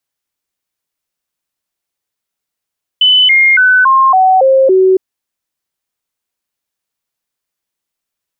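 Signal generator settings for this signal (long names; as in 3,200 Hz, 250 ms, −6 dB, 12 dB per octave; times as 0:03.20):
stepped sweep 3,010 Hz down, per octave 2, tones 7, 0.28 s, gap 0.00 s −4.5 dBFS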